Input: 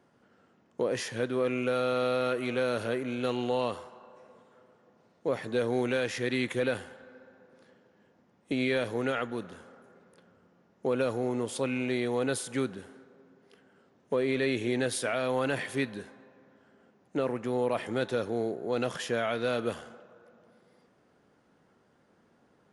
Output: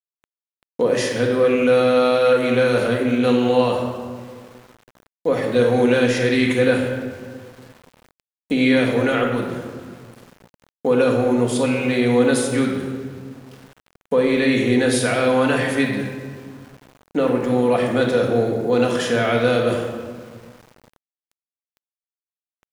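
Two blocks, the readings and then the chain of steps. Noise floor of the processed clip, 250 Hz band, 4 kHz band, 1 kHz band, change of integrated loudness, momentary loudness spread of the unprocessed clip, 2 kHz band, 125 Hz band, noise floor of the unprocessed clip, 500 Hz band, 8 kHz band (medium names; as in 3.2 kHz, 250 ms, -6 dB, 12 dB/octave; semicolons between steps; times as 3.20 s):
under -85 dBFS, +13.5 dB, +11.0 dB, +11.0 dB, +12.0 dB, 8 LU, +11.5 dB, +13.0 dB, -66 dBFS, +12.0 dB, +10.0 dB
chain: simulated room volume 1600 m³, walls mixed, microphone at 1.9 m; small samples zeroed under -50 dBFS; trim +8 dB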